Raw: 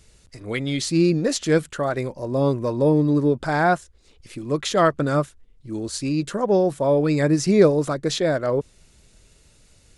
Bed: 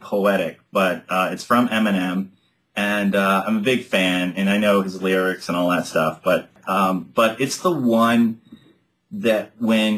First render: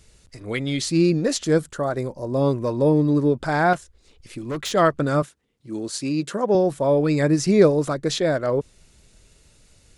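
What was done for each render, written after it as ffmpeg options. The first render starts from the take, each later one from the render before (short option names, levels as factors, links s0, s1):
-filter_complex "[0:a]asettb=1/sr,asplit=3[s0][s1][s2];[s0]atrim=end=1.444[s3];[s1]atrim=start=1.44:end=2.34,asetpts=PTS-STARTPTS,afade=t=in:d=0.004:c=qsin,afade=t=out:st=0.896:d=0.004:c=qsin,equalizer=f=2500:t=o:w=1.1:g=-8.5[s4];[s2]atrim=start=2.336[s5];[s3][s4]acrossfade=d=0.004:c1=hsin:c2=qsin[s6];[s6][s5]acrossfade=d=0.004:c1=qsin:c2=hsin,asettb=1/sr,asplit=3[s7][s8][s9];[s7]atrim=end=3.734[s10];[s8]atrim=start=3.73:end=4.72,asetpts=PTS-STARTPTS,afade=t=in:d=0.004:c=qsin,afade=t=out:st=0.986:d=0.004:c=qsin,asoftclip=type=hard:threshold=0.0631[s11];[s9]atrim=start=4.716[s12];[s10][s11]acrossfade=d=0.004:c1=hsin:c2=qsin[s13];[s13][s12]acrossfade=d=0.004:c1=qsin:c2=hsin,asettb=1/sr,asplit=3[s14][s15][s16];[s14]atrim=end=5.224[s17];[s15]atrim=start=5.22:end=6.55,asetpts=PTS-STARTPTS,afade=t=in:d=0.004:c=qsin,afade=t=out:st=1.326:d=0.004:c=qsin,highpass=150[s18];[s16]atrim=start=6.546[s19];[s17][s18]acrossfade=d=0.004:c1=hsin:c2=qsin[s20];[s20][s19]acrossfade=d=0.004:c1=qsin:c2=hsin"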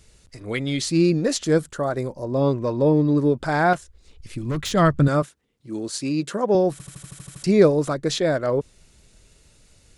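-filter_complex "[0:a]asettb=1/sr,asplit=3[s0][s1][s2];[s0]atrim=end=2.244[s3];[s1]atrim=start=2.24:end=3.18,asetpts=PTS-STARTPTS,afade=t=in:d=0.004:c=qsin,afade=t=out:st=0.936:d=0.004:c=qsin,lowpass=6100[s4];[s2]atrim=start=3.176[s5];[s3][s4]acrossfade=d=0.004:c1=hsin:c2=qsin[s6];[s6][s5]acrossfade=d=0.004:c1=qsin:c2=hsin,asettb=1/sr,asplit=3[s7][s8][s9];[s7]atrim=end=3.744[s10];[s8]atrim=start=3.74:end=5.08,asetpts=PTS-STARTPTS,afade=t=in:d=0.004:c=qsin,afade=t=out:st=1.336:d=0.004:c=qsin,asubboost=boost=10:cutoff=210[s11];[s9]atrim=start=5.076[s12];[s10][s11]acrossfade=d=0.004:c1=hsin:c2=qsin[s13];[s13][s12]acrossfade=d=0.004:c1=qsin:c2=hsin,asplit=10[s14][s15][s16][s17][s18][s19][s20][s21][s22][s23];[s14]atrim=end=6.802[s24];[s15]atrim=start=6.718:end=6.802[s25];[s16]atrim=start=6.718:end=6.802[s26];[s17]atrim=start=6.718:end=6.802[s27];[s18]atrim=start=6.718:end=6.802[s28];[s19]atrim=start=6.718:end=6.802[s29];[s20]atrim=start=6.718:end=6.802[s30];[s21]atrim=start=6.718:end=6.802[s31];[s22]atrim=start=6.718:end=6.802[s32];[s23]atrim=start=7.438[s33];[s24][s25]acrossfade=d=0.004:c1=hsin:c2=hsin[s34];[s34][s26]acrossfade=d=0.004:c1=hsin:c2=hsin[s35];[s35][s27]acrossfade=d=0.004:c1=hsin:c2=hsin[s36];[s36][s28]acrossfade=d=0.004:c1=hsin:c2=hsin[s37];[s37][s29]acrossfade=d=0.004:c1=hsin:c2=hsin[s38];[s38][s30]acrossfade=d=0.004:c1=hsin:c2=hsin[s39];[s39][s31]acrossfade=d=0.004:c1=hsin:c2=hsin[s40];[s40][s32]acrossfade=d=0.004:c1=hsin:c2=hsin[s41];[s41][s33]acrossfade=d=0.004:c1=hsin:c2=hsin"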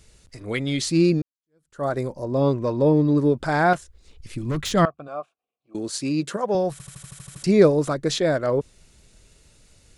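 -filter_complex "[0:a]asettb=1/sr,asplit=3[s0][s1][s2];[s0]atrim=end=4.854[s3];[s1]atrim=start=4.85:end=5.75,asetpts=PTS-STARTPTS,afade=t=in:d=0.004:c=qsin,afade=t=out:st=0.896:d=0.004:c=qsin,asplit=3[s4][s5][s6];[s4]bandpass=f=730:t=q:w=8,volume=1[s7];[s5]bandpass=f=1090:t=q:w=8,volume=0.501[s8];[s6]bandpass=f=2440:t=q:w=8,volume=0.355[s9];[s7][s8][s9]amix=inputs=3:normalize=0[s10];[s2]atrim=start=5.746[s11];[s3][s10]acrossfade=d=0.004:c1=hsin:c2=qsin[s12];[s12][s11]acrossfade=d=0.004:c1=qsin:c2=hsin,asettb=1/sr,asplit=3[s13][s14][s15];[s13]atrim=end=6.364[s16];[s14]atrim=start=6.36:end=7.32,asetpts=PTS-STARTPTS,afade=t=in:d=0.004:c=qsin,afade=t=out:st=0.956:d=0.004:c=qsin,equalizer=f=290:t=o:w=0.9:g=-11[s17];[s15]atrim=start=7.316[s18];[s16][s17]acrossfade=d=0.004:c1=hsin:c2=qsin[s19];[s19][s18]acrossfade=d=0.004:c1=qsin:c2=hsin,asplit=2[s20][s21];[s20]atrim=end=1.22,asetpts=PTS-STARTPTS,afade=t=out:st=1.216:d=0.004:c=hsin[s22];[s21]atrim=start=1.22,asetpts=PTS-STARTPTS,afade=t=in:d=0.62:c=exp[s23];[s22][s23]concat=n=2:v=0:a=1"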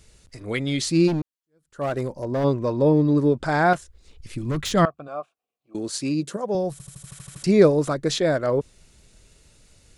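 -filter_complex "[0:a]asplit=3[s0][s1][s2];[s0]afade=t=out:st=1.07:d=0.02[s3];[s1]volume=10,asoftclip=hard,volume=0.1,afade=t=in:st=1.07:d=0.02,afade=t=out:st=2.43:d=0.02[s4];[s2]afade=t=in:st=2.43:d=0.02[s5];[s3][s4][s5]amix=inputs=3:normalize=0,asettb=1/sr,asplit=3[s6][s7][s8];[s6]atrim=end=3.254[s9];[s7]atrim=start=3.25:end=3.65,asetpts=PTS-STARTPTS,afade=t=in:d=0.004:c=qsin,afade=t=out:st=0.396:d=0.004:c=qsin,lowpass=f=9800:w=0.5412,lowpass=f=9800:w=1.3066[s10];[s8]atrim=start=3.646[s11];[s9][s10]acrossfade=d=0.004:c1=hsin:c2=qsin[s12];[s12][s11]acrossfade=d=0.004:c1=qsin:c2=hsin,asettb=1/sr,asplit=3[s13][s14][s15];[s13]atrim=end=6.144[s16];[s14]atrim=start=6.14:end=7.07,asetpts=PTS-STARTPTS,afade=t=in:d=0.004:c=qsin,afade=t=out:st=0.926:d=0.004:c=qsin,equalizer=f=1700:w=0.52:g=-8[s17];[s15]atrim=start=7.066[s18];[s16][s17]acrossfade=d=0.004:c1=hsin:c2=qsin[s19];[s19][s18]acrossfade=d=0.004:c1=qsin:c2=hsin"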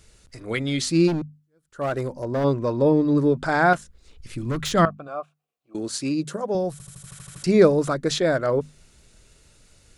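-af "equalizer=f=1400:t=o:w=0.44:g=3.5,bandreject=f=50:t=h:w=6,bandreject=f=100:t=h:w=6,bandreject=f=150:t=h:w=6,bandreject=f=200:t=h:w=6,bandreject=f=250:t=h:w=6"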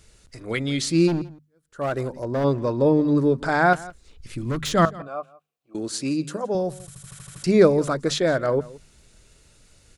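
-af "aecho=1:1:169:0.0944"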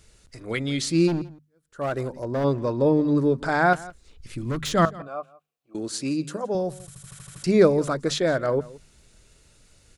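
-af "volume=0.841"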